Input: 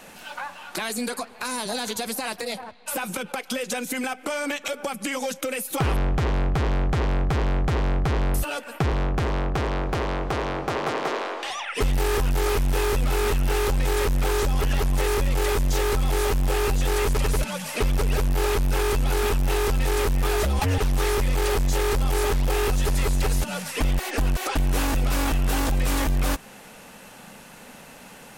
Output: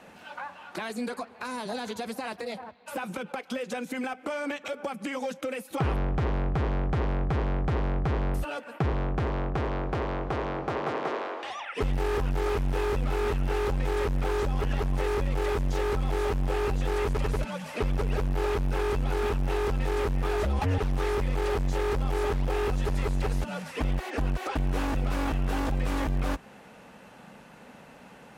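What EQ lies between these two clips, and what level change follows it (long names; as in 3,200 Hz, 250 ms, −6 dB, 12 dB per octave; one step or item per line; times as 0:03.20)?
high-pass filter 45 Hz
low-pass filter 1,800 Hz 6 dB per octave
−3.0 dB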